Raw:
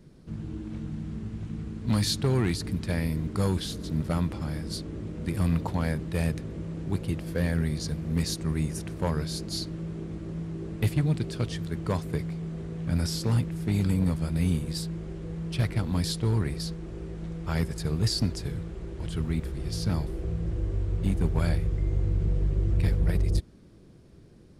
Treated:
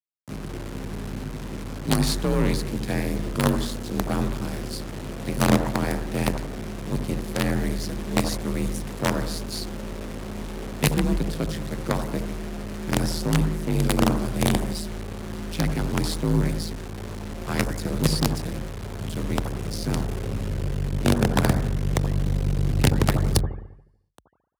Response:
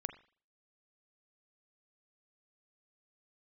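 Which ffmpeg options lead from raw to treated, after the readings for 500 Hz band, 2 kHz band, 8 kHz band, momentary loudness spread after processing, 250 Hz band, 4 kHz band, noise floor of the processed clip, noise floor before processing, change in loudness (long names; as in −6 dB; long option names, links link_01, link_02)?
+6.5 dB, +8.0 dB, +6.5 dB, 13 LU, +4.5 dB, +4.0 dB, −38 dBFS, −52 dBFS, +3.5 dB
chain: -filter_complex "[0:a]acrusher=bits=4:dc=4:mix=0:aa=0.000001,afreqshift=41[link_01];[1:a]atrim=start_sample=2205,asetrate=24255,aresample=44100[link_02];[link_01][link_02]afir=irnorm=-1:irlink=0,volume=3.5dB"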